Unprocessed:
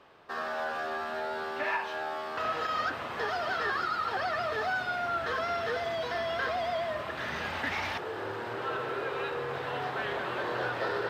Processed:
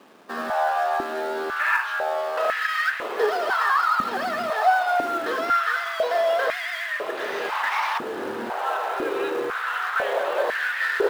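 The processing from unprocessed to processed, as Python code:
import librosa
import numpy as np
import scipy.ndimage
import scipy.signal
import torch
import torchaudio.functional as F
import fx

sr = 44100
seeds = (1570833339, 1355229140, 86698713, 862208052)

p1 = fx.quant_companded(x, sr, bits=4)
p2 = x + (p1 * 10.0 ** (-5.0 / 20.0))
y = fx.filter_held_highpass(p2, sr, hz=2.0, low_hz=230.0, high_hz=1800.0)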